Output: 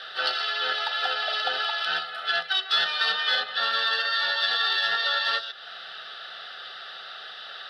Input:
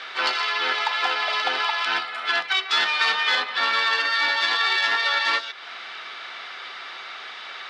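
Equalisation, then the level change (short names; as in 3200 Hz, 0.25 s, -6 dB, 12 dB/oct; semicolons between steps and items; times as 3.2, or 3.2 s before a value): low shelf 240 Hz +10.5 dB; high shelf 4500 Hz +6.5 dB; fixed phaser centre 1500 Hz, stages 8; -2.5 dB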